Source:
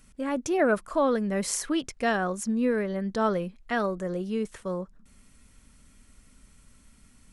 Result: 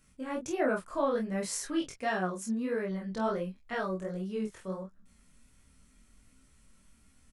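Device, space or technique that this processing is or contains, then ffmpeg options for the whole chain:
double-tracked vocal: -filter_complex "[0:a]asettb=1/sr,asplit=3[link_01][link_02][link_03];[link_01]atrim=end=1.964[link_04];[link_02]atrim=start=1.96:end=2.89,asetpts=PTS-STARTPTS,afade=type=in:duration=0.004:curve=qsin,afade=type=out:start_time=0.926:duration=0.004:curve=qsin,highpass=frequency=86:poles=1[link_05];[link_03]atrim=start=2.886[link_06];[link_04][link_05]acrossfade=duration=0.004:curve1=hsin:curve2=qsin[link_07];[link_07][link_06]acrossfade=duration=0.004:curve1=qsin:curve2=hsin,asplit=2[link_08][link_09];[link_09]adelay=27,volume=-3dB[link_10];[link_08][link_10]amix=inputs=2:normalize=0,flanger=delay=15:depth=6.6:speed=1.4,volume=-4.5dB"

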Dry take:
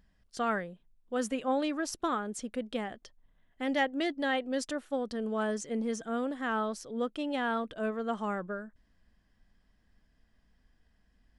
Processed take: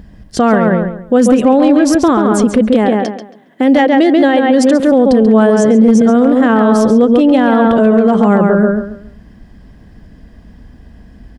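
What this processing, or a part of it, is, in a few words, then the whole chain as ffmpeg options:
mastering chain: -filter_complex "[0:a]asettb=1/sr,asplit=3[link_01][link_02][link_03];[link_01]atrim=end=2.734[link_04];[link_02]atrim=start=2.73:end=4.8,asetpts=PTS-STARTPTS,afade=type=in:duration=0.004:curve=qsin,afade=type=out:start_time=2.066:duration=0.004:curve=qsin,highpass=frequency=210:width=0.5412,highpass=frequency=210:width=1.3066[link_05];[link_03]atrim=start=4.796[link_06];[link_04][link_05]acrossfade=duration=0.004:curve1=hsin:curve2=qsin[link_07];[link_07][link_06]acrossfade=duration=0.004:curve1=qsin:curve2=hsin,highpass=frequency=60:poles=1,equalizer=frequency=1300:width_type=o:width=0.2:gain=-3,asplit=2[link_08][link_09];[link_09]adelay=137,lowpass=frequency=3200:poles=1,volume=-4.5dB,asplit=2[link_10][link_11];[link_11]adelay=137,lowpass=frequency=3200:poles=1,volume=0.28,asplit=2[link_12][link_13];[link_13]adelay=137,lowpass=frequency=3200:poles=1,volume=0.28,asplit=2[link_14][link_15];[link_15]adelay=137,lowpass=frequency=3200:poles=1,volume=0.28[link_16];[link_08][link_10][link_12][link_14][link_16]amix=inputs=5:normalize=0,acompressor=threshold=-34dB:ratio=2,tiltshelf=frequency=730:gain=7,asoftclip=type=hard:threshold=-23.5dB,alimiter=level_in=28dB:limit=-1dB:release=50:level=0:latency=1,volume=-1dB"

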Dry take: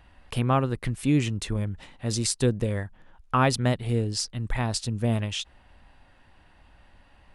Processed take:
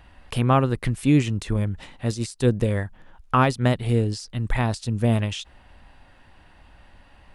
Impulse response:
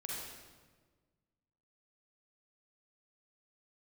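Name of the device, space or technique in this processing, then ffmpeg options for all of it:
de-esser from a sidechain: -filter_complex "[0:a]asplit=2[link_01][link_02];[link_02]highpass=5200,apad=whole_len=323919[link_03];[link_01][link_03]sidechaincompress=threshold=-40dB:ratio=10:attack=3.9:release=74,volume=4.5dB"

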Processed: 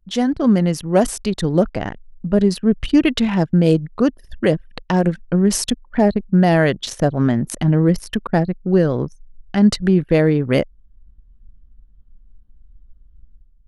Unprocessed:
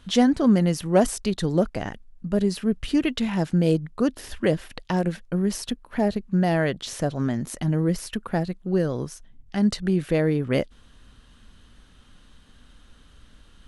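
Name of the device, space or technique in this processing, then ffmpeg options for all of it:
voice memo with heavy noise removal: -filter_complex "[0:a]asettb=1/sr,asplit=3[link_01][link_02][link_03];[link_01]atrim=end=5.044[link_04];[link_02]atrim=start=5.04:end=5.87,asetpts=PTS-STARTPTS,afade=type=in:duration=0.004:curve=qsin,afade=type=out:start_time=0.826:duration=0.004:curve=qsin,equalizer=frequency=7800:width=1.1:gain=5.5[link_05];[link_03]atrim=start=5.866[link_06];[link_04][link_05]acrossfade=duration=0.004:curve1=hsin:curve2=qsin[link_07];[link_07][link_06]acrossfade=duration=0.004:curve1=qsin:curve2=hsin,anlmdn=6.31,dynaudnorm=framelen=100:gausssize=7:maxgain=11dB,volume=-1.5dB"

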